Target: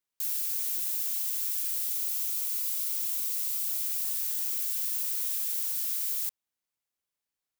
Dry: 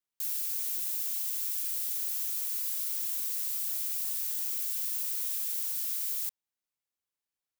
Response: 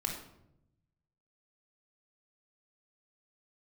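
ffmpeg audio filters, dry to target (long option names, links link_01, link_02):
-filter_complex "[0:a]asettb=1/sr,asplit=3[link_01][link_02][link_03];[link_01]atrim=end=1.854[link_04];[link_02]atrim=start=1.85:end=3.83,asetpts=PTS-STARTPTS,afade=type=in:duration=0.004:curve=qsin,afade=type=out:start_time=1.976:duration=0.004:curve=qsin,bandreject=frequency=1700:width=6.8[link_05];[link_03]atrim=start=3.826[link_06];[link_04][link_05]acrossfade=duration=0.004:curve1=hsin:curve2=qsin[link_07];[link_07][link_06]acrossfade=duration=0.004:curve1=qsin:curve2=hsin,volume=2dB"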